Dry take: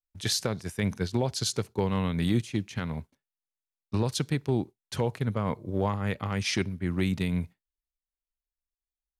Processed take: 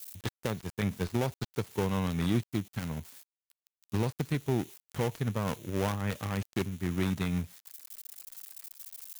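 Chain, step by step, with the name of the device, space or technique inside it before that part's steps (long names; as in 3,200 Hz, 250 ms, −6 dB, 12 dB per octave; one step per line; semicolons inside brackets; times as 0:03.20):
budget class-D amplifier (gap after every zero crossing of 0.29 ms; spike at every zero crossing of −30.5 dBFS)
level −2.5 dB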